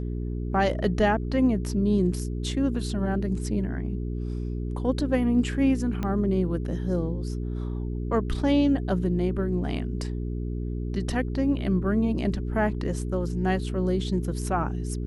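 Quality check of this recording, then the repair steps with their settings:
hum 60 Hz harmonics 7 -30 dBFS
6.03 pop -17 dBFS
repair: de-click; de-hum 60 Hz, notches 7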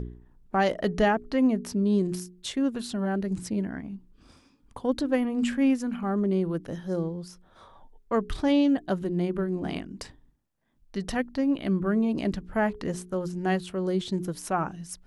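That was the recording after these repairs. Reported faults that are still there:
6.03 pop

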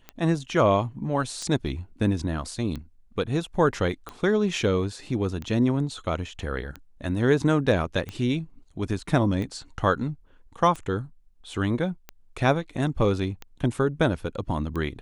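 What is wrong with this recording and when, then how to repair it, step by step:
tick 45 rpm -21 dBFS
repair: de-click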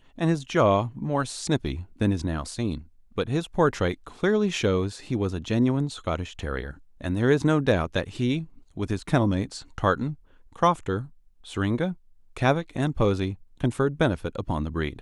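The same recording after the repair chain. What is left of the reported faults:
none

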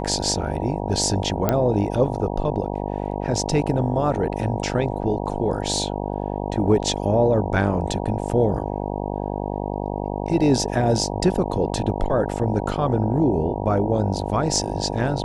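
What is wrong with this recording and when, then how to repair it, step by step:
buzz 50 Hz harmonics 19 -27 dBFS
1.49 pop -5 dBFS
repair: de-click; de-hum 50 Hz, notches 19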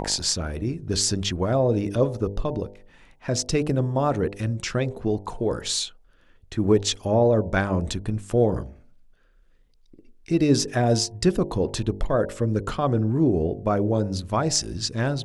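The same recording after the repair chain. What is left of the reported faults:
none

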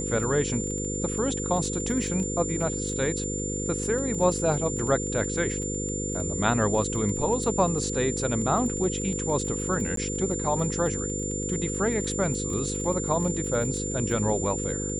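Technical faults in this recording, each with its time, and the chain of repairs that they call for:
buzz 50 Hz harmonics 10 -32 dBFS
crackle 22/s -32 dBFS
tone 7200 Hz -32 dBFS
9.96–9.97 gap 13 ms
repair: de-click; de-hum 50 Hz, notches 10; notch 7200 Hz, Q 30; interpolate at 9.96, 13 ms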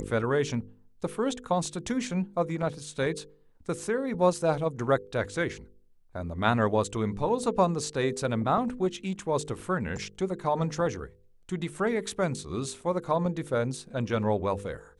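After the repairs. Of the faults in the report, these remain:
none

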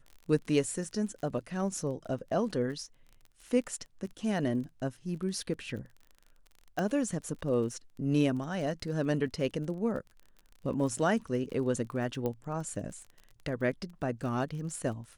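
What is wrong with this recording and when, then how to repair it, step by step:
crackle 25/s -41 dBFS
6.79 pop -21 dBFS
12.26 pop -21 dBFS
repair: de-click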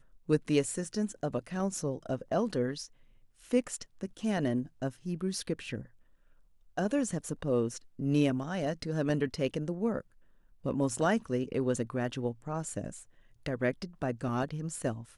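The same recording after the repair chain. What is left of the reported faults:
none

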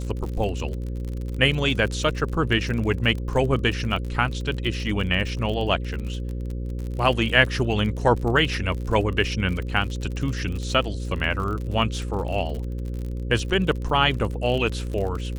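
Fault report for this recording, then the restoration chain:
buzz 60 Hz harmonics 9 -29 dBFS
crackle 45/s -30 dBFS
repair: de-click; de-hum 60 Hz, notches 9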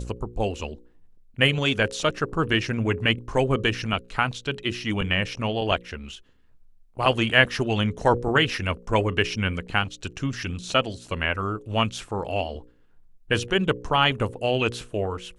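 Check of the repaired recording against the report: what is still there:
none

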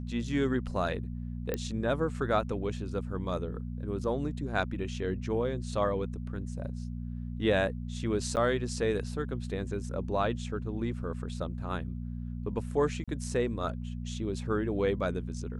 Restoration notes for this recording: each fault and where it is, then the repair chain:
hum 60 Hz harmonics 4 -37 dBFS
1.54 pop -17 dBFS
8.36–8.37 gap 9.1 ms
13.04–13.08 gap 36 ms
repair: de-click; de-hum 60 Hz, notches 4; interpolate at 8.36, 9.1 ms; interpolate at 13.04, 36 ms

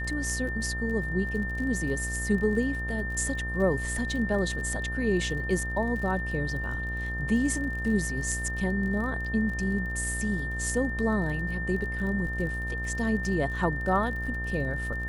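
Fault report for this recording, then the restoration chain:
buzz 60 Hz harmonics 23 -34 dBFS
crackle 34/s -36 dBFS
tone 1800 Hz -33 dBFS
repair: de-click; de-hum 60 Hz, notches 23; notch 1800 Hz, Q 30

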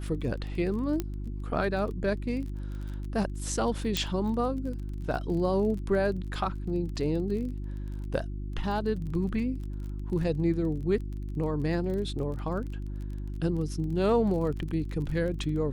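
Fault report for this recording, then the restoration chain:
crackle 27/s -37 dBFS
hum 50 Hz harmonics 7 -35 dBFS
1 pop -16 dBFS
3.97 pop -12 dBFS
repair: de-click; de-hum 50 Hz, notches 7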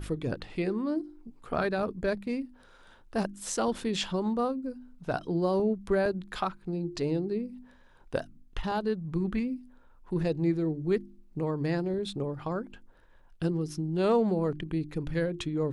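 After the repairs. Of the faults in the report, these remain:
none

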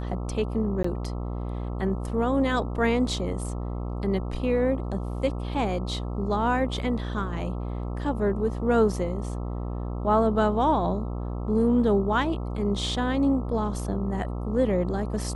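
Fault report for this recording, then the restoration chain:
buzz 60 Hz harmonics 22 -31 dBFS
0.83–0.84 gap 14 ms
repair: de-hum 60 Hz, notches 22; interpolate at 0.83, 14 ms

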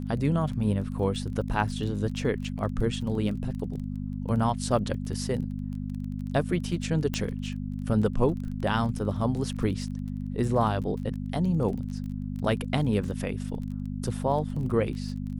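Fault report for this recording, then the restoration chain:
crackle 24/s -36 dBFS
hum 50 Hz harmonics 5 -33 dBFS
7.14 pop -14 dBFS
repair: de-click; de-hum 50 Hz, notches 5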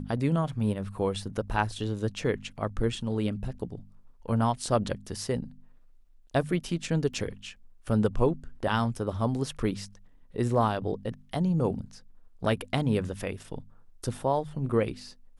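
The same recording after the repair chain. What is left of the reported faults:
7.14 pop

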